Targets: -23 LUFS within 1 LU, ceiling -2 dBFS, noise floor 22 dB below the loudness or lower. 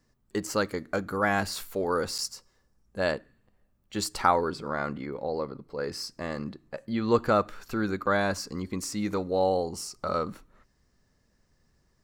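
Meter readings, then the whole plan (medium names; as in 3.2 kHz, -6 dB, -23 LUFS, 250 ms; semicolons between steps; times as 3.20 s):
dropouts 2; longest dropout 7.4 ms; loudness -29.5 LUFS; peak level -7.5 dBFS; loudness target -23.0 LUFS
-> interpolate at 2.18/8.06 s, 7.4 ms; trim +6.5 dB; peak limiter -2 dBFS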